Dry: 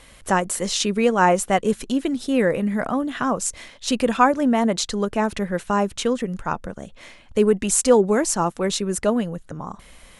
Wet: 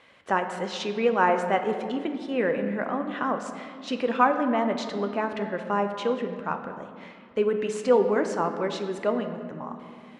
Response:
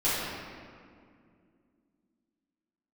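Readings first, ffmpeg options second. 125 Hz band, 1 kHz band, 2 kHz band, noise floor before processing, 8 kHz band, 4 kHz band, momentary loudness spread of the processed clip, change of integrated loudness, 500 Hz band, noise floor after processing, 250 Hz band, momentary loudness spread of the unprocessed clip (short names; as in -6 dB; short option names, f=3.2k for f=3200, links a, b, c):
-9.0 dB, -3.5 dB, -3.5 dB, -49 dBFS, -21.5 dB, -9.5 dB, 14 LU, -5.5 dB, -4.0 dB, -49 dBFS, -7.5 dB, 12 LU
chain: -filter_complex "[0:a]highpass=150,lowpass=2.8k,lowshelf=f=300:g=-6,asplit=2[a][b];[1:a]atrim=start_sample=2205[c];[b][c]afir=irnorm=-1:irlink=0,volume=-17.5dB[d];[a][d]amix=inputs=2:normalize=0,volume=-4.5dB"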